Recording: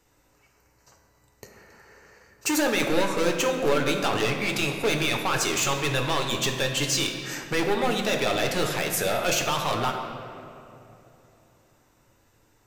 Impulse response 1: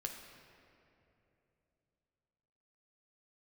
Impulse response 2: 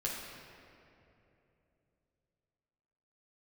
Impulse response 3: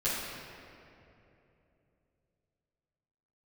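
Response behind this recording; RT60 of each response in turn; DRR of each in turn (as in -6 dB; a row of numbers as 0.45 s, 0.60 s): 1; 3.0 s, 3.0 s, 2.9 s; 1.5 dB, -5.0 dB, -14.5 dB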